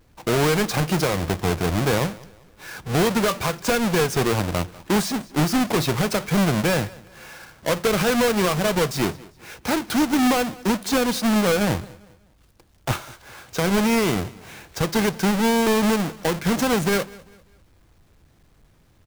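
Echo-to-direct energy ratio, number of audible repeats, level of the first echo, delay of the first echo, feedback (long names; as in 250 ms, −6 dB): −21.5 dB, 2, −22.0 dB, 198 ms, 36%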